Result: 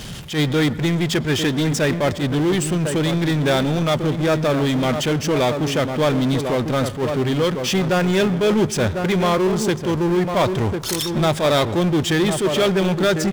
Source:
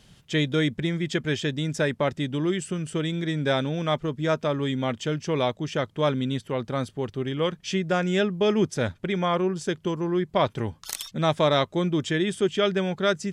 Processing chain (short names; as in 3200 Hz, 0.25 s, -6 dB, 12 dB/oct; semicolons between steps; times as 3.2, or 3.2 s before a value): outdoor echo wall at 180 m, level -11 dB; power-law curve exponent 0.5; on a send at -17.5 dB: reverb RT60 1.4 s, pre-delay 98 ms; on the sum: attack slew limiter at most 170 dB/s